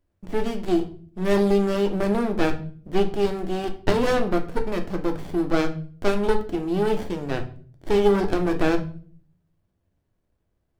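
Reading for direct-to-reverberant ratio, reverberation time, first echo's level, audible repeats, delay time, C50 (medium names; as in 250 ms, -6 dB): 4.5 dB, 0.45 s, no echo, no echo, no echo, 13.0 dB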